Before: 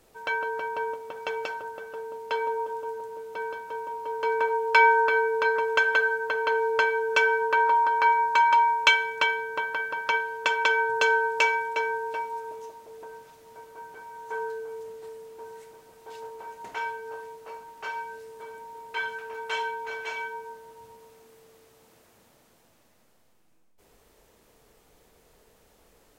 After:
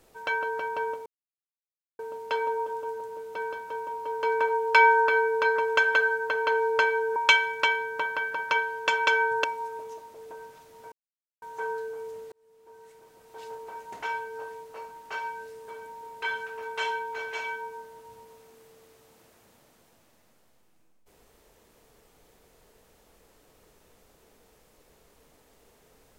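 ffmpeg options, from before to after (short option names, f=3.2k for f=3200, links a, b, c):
-filter_complex "[0:a]asplit=8[a][b][c][d][e][f][g][h];[a]atrim=end=1.06,asetpts=PTS-STARTPTS,afade=t=out:st=1.056:d=0.004:c=hsin[i];[b]atrim=start=1.06:end=1.99,asetpts=PTS-STARTPTS,volume=0[j];[c]atrim=start=1.99:end=7.162,asetpts=PTS-STARTPTS,afade=t=in:d=0.004:c=hsin[k];[d]atrim=start=8.738:end=11.022[l];[e]atrim=start=12.158:end=13.64,asetpts=PTS-STARTPTS,afade=t=out:st=1.478:d=0.004:c=hsin[m];[f]atrim=start=13.64:end=14.14,asetpts=PTS-STARTPTS,volume=0[n];[g]atrim=start=14.14:end=15.04,asetpts=PTS-STARTPTS,afade=t=in:d=0.004:c=hsin,afade=t=out:st=0.896:d=0.004:c=hsin[o];[h]atrim=start=15.04,asetpts=PTS-STARTPTS,afade=t=in:d=1.17[p];[i][j][k]concat=n=3:v=0:a=1[q];[q][l]acrossfade=d=0.004:c1=hsin:c2=hsin[r];[m][n][o][p]concat=n=4:v=0:a=1[s];[r][s]acrossfade=d=0.004:c1=hsin:c2=hsin"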